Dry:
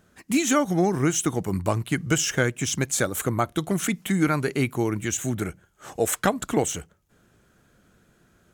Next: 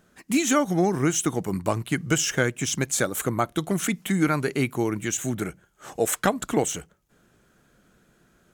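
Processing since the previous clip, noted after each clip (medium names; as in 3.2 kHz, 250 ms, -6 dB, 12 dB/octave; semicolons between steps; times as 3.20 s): peaking EQ 86 Hz -8.5 dB 0.57 oct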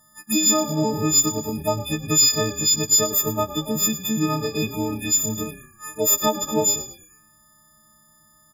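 partials quantised in pitch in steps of 6 st; frequency-shifting echo 110 ms, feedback 39%, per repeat -32 Hz, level -14 dB; touch-sensitive phaser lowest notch 410 Hz, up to 2 kHz, full sweep at -20 dBFS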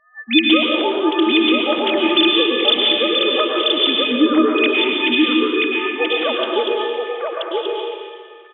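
formants replaced by sine waves; delay 980 ms -3 dB; reverberation RT60 1.8 s, pre-delay 98 ms, DRR -1.5 dB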